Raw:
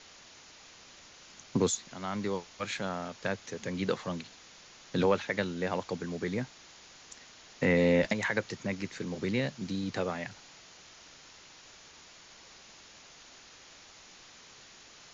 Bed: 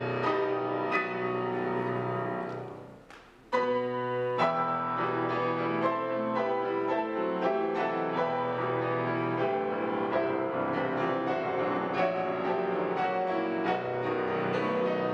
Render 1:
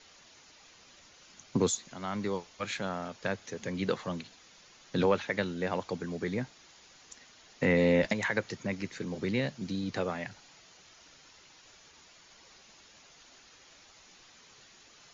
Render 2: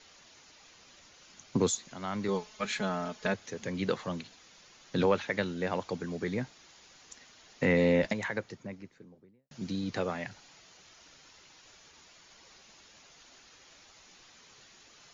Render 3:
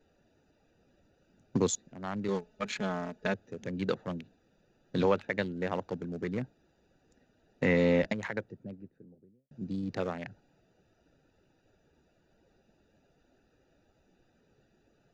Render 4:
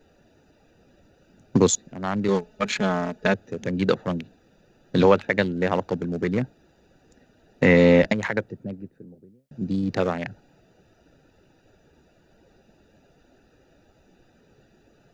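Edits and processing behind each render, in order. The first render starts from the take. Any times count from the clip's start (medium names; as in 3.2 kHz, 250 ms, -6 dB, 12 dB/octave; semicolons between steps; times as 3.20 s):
noise reduction 6 dB, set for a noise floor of -54 dBFS
2.28–3.34 s: comb 4.7 ms, depth 82%; 7.71–9.51 s: studio fade out
local Wiener filter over 41 samples
trim +10 dB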